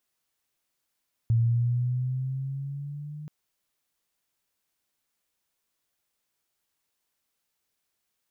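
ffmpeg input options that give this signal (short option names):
-f lavfi -i "aevalsrc='pow(10,(-18.5-18*t/1.98)/20)*sin(2*PI*114*1.98/(5*log(2)/12)*(exp(5*log(2)/12*t/1.98)-1))':d=1.98:s=44100"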